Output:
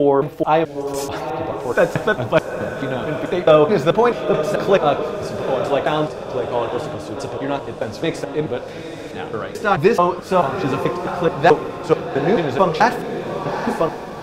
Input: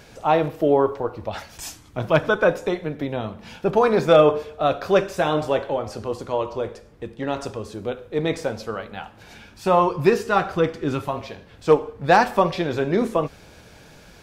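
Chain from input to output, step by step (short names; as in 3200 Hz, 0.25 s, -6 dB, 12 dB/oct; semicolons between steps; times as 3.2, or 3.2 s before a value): slices in reverse order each 0.217 s, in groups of 4; diffused feedback echo 0.842 s, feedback 47%, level -8 dB; gain +2.5 dB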